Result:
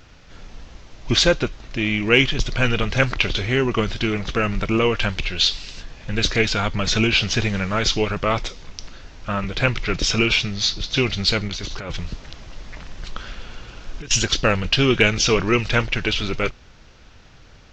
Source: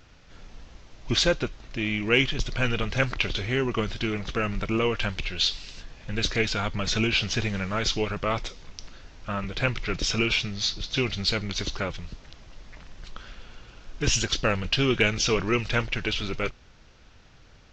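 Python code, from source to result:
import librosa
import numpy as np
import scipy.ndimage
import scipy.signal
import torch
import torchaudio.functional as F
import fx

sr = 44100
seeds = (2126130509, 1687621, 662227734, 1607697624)

y = fx.over_compress(x, sr, threshold_db=-34.0, ratio=-1.0, at=(11.48, 14.11))
y = F.gain(torch.from_numpy(y), 6.0).numpy()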